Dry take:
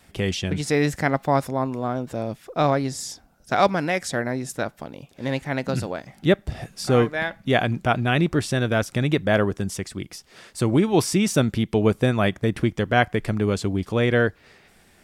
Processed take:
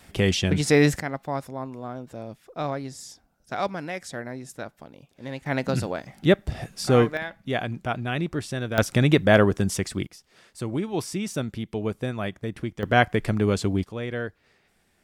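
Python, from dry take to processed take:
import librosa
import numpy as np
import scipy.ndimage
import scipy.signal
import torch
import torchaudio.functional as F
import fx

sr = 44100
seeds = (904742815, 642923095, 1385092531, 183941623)

y = fx.gain(x, sr, db=fx.steps((0.0, 3.0), (1.0, -9.0), (5.46, 0.0), (7.17, -7.0), (8.78, 3.0), (10.07, -9.0), (12.83, 0.0), (13.84, -11.0)))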